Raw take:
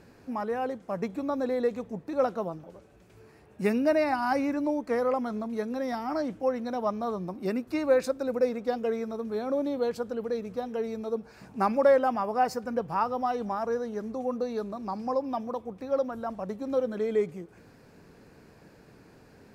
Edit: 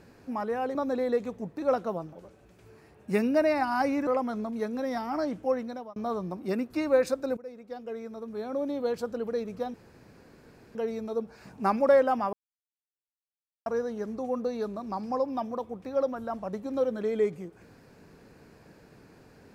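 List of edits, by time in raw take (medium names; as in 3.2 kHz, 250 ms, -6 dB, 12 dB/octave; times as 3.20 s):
0.75–1.26 s: delete
4.58–5.04 s: delete
6.53–6.93 s: fade out
8.34–10.06 s: fade in, from -20.5 dB
10.71 s: insert room tone 1.01 s
12.29–13.62 s: mute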